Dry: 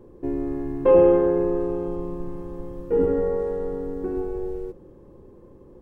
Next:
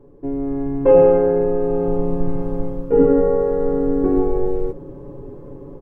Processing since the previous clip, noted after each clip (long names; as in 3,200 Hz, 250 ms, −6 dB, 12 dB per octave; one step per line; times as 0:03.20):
high-shelf EQ 2,000 Hz −11 dB
comb filter 7.1 ms, depth 78%
automatic gain control gain up to 12.5 dB
level −1 dB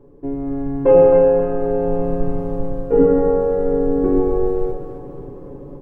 echo with a time of its own for lows and highs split 450 Hz, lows 106 ms, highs 266 ms, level −7 dB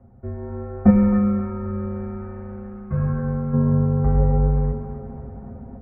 parametric band 370 Hz +11 dB 0.27 octaves
gain on a spectral selection 0:00.90–0:03.54, 390–1,400 Hz −9 dB
single-sideband voice off tune −320 Hz 550–2,300 Hz
level +6 dB